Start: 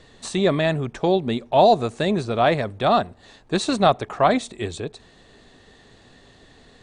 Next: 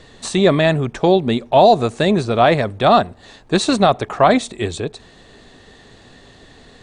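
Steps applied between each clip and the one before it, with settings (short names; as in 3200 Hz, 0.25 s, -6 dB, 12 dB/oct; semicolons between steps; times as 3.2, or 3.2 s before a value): maximiser +7 dB; gain -1 dB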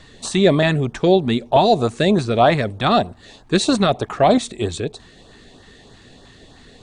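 LFO notch saw up 3.2 Hz 400–2700 Hz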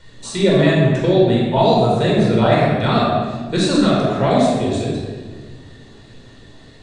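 reverb RT60 1.5 s, pre-delay 17 ms, DRR -4.5 dB; gain -7.5 dB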